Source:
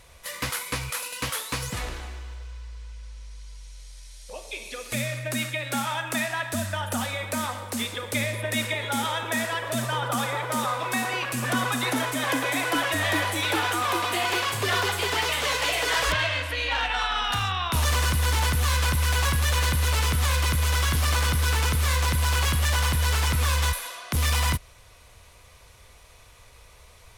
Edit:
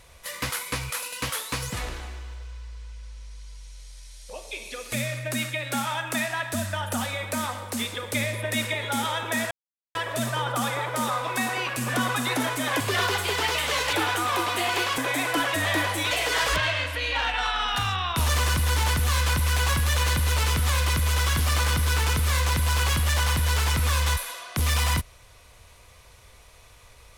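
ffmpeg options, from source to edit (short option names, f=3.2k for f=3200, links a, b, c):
-filter_complex "[0:a]asplit=6[a][b][c][d][e][f];[a]atrim=end=9.51,asetpts=PTS-STARTPTS,afade=t=out:st=9.506:d=0.004:c=hsin,apad=pad_dur=0.44[g];[b]atrim=start=9.51:end=12.362,asetpts=PTS-STARTPTS,afade=t=in:d=0.004:c=hsin[h];[c]atrim=start=14.538:end=15.672[i];[d]atrim=start=13.488:end=14.542[j];[e]atrim=start=12.358:end=13.492[k];[f]atrim=start=15.668[l];[g][h]concat=n=2:v=0:a=1[m];[m][i]acrossfade=d=0.004:c1=hsin:c2=hsin[n];[n][j]acrossfade=d=0.004:c1=hsin:c2=hsin[o];[o][k]acrossfade=d=0.004:c1=hsin:c2=hsin[p];[p][l]acrossfade=d=0.004:c1=hsin:c2=hsin"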